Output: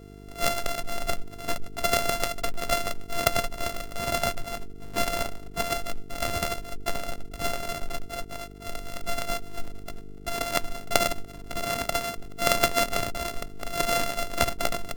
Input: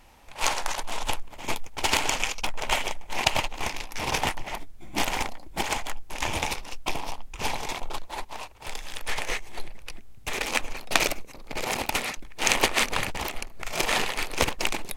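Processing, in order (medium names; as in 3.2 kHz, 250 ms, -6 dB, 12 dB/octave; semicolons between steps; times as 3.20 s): sorted samples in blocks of 64 samples; mains buzz 50 Hz, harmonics 9, -46 dBFS -2 dB/octave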